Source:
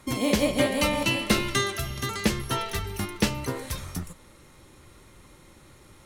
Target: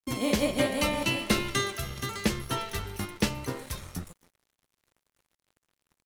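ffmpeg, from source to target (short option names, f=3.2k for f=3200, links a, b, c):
-filter_complex "[0:a]asplit=4[a][b][c][d];[b]adelay=262,afreqshift=84,volume=-19.5dB[e];[c]adelay=524,afreqshift=168,volume=-28.9dB[f];[d]adelay=786,afreqshift=252,volume=-38.2dB[g];[a][e][f][g]amix=inputs=4:normalize=0,aeval=exprs='sgn(val(0))*max(abs(val(0))-0.00562,0)':c=same,volume=-2.5dB"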